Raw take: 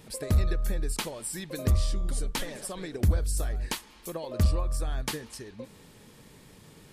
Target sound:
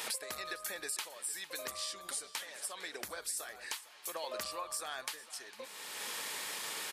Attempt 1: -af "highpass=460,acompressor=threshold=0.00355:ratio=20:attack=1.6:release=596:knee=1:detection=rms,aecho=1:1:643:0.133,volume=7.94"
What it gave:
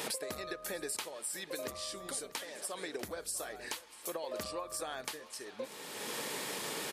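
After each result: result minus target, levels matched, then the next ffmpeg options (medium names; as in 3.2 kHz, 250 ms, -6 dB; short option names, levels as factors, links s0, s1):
echo 189 ms late; 500 Hz band +5.5 dB
-af "highpass=460,acompressor=threshold=0.00355:ratio=20:attack=1.6:release=596:knee=1:detection=rms,aecho=1:1:454:0.133,volume=7.94"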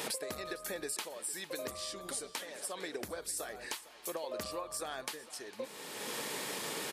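500 Hz band +5.5 dB
-af "highpass=960,acompressor=threshold=0.00355:ratio=20:attack=1.6:release=596:knee=1:detection=rms,aecho=1:1:454:0.133,volume=7.94"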